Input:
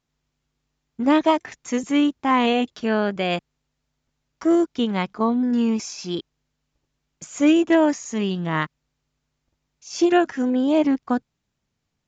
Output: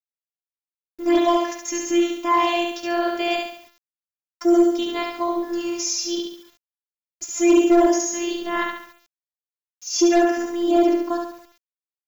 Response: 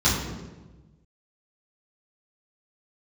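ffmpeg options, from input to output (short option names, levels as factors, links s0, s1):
-filter_complex "[0:a]bass=f=250:g=-2,treble=f=4000:g=8,asplit=2[s0][s1];[s1]aecho=0:1:70|140|210|280|350|420:0.631|0.278|0.122|0.0537|0.0236|0.0104[s2];[s0][s2]amix=inputs=2:normalize=0,afftfilt=real='hypot(re,im)*cos(PI*b)':imag='0':win_size=512:overlap=0.75,aresample=16000,aeval=exprs='0.668*sin(PI/2*1.58*val(0)/0.668)':c=same,aresample=44100,acrusher=bits=7:mix=0:aa=0.000001,aexciter=amount=1.1:drive=1.7:freq=5200,volume=0.562"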